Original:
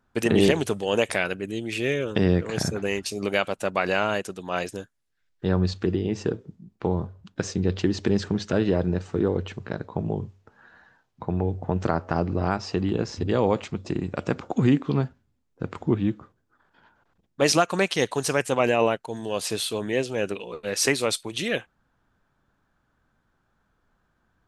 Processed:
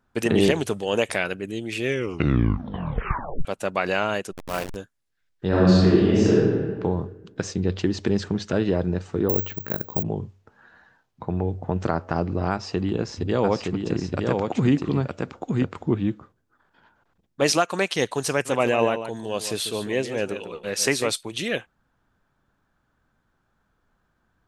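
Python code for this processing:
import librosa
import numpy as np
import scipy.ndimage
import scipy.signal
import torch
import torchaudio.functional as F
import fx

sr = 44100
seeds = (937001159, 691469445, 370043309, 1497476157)

y = fx.delta_hold(x, sr, step_db=-26.5, at=(4.31, 4.74), fade=0.02)
y = fx.reverb_throw(y, sr, start_s=5.48, length_s=1.23, rt60_s=1.6, drr_db=-8.5)
y = fx.resample_bad(y, sr, factor=2, down='none', up='zero_stuff', at=(9.29, 10.03))
y = fx.echo_single(y, sr, ms=917, db=-3.5, at=(13.43, 15.63), fade=0.02)
y = fx.highpass(y, sr, hz=210.0, slope=6, at=(17.5, 17.95))
y = fx.echo_single(y, sr, ms=145, db=-10.5, at=(18.45, 21.12), fade=0.02)
y = fx.edit(y, sr, fx.tape_stop(start_s=1.85, length_s=1.6), tone=tone)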